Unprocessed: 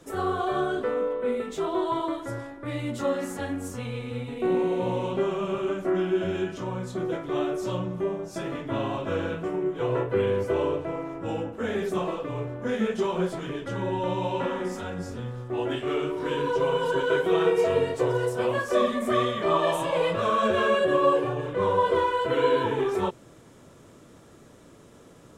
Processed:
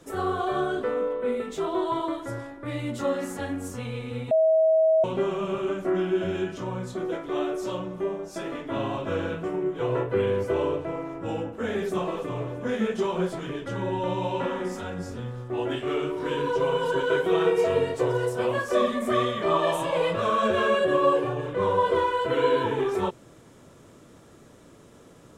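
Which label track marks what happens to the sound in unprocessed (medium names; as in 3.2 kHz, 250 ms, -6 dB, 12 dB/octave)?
4.310000	5.040000	bleep 640 Hz -16.5 dBFS
6.930000	8.770000	peaking EQ 130 Hz -10.5 dB
11.810000	12.290000	echo throw 330 ms, feedback 35%, level -10.5 dB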